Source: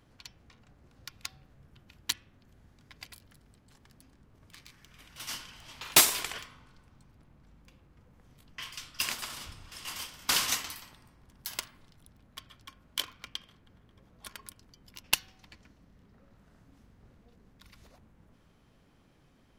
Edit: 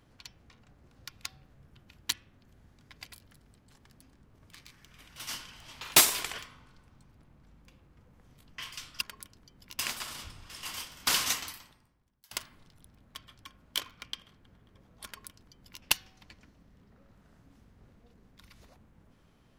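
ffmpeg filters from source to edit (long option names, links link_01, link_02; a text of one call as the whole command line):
ffmpeg -i in.wav -filter_complex "[0:a]asplit=4[link_01][link_02][link_03][link_04];[link_01]atrim=end=9.012[link_05];[link_02]atrim=start=14.268:end=15.052[link_06];[link_03]atrim=start=9.008:end=11.53,asetpts=PTS-STARTPTS,afade=type=out:start_time=1.692:duration=0.83:curve=qua:silence=0.0668344[link_07];[link_04]atrim=start=11.53,asetpts=PTS-STARTPTS,afade=type=in:duration=0.004:curve=hsin:silence=0.0668344[link_08];[link_05][link_06]acrossfade=duration=0.004:curve1=hsin:curve2=hsin[link_09];[link_07][link_08]concat=n=2:v=0:a=1[link_10];[link_09][link_10]acrossfade=duration=0.004:curve1=hsin:curve2=hsin" out.wav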